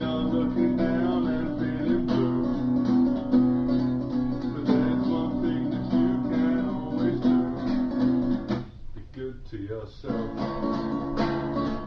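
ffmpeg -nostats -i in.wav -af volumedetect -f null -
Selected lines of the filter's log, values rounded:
mean_volume: -25.4 dB
max_volume: -9.8 dB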